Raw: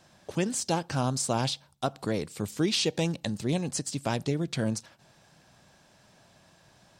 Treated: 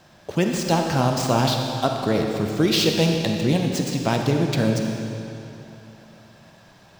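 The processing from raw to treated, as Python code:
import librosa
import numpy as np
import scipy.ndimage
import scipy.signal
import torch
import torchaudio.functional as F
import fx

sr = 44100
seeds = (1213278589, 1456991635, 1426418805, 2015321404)

y = scipy.ndimage.median_filter(x, 5, mode='constant')
y = fx.rev_freeverb(y, sr, rt60_s=3.0, hf_ratio=0.9, predelay_ms=5, drr_db=2.0)
y = y * 10.0 ** (7.0 / 20.0)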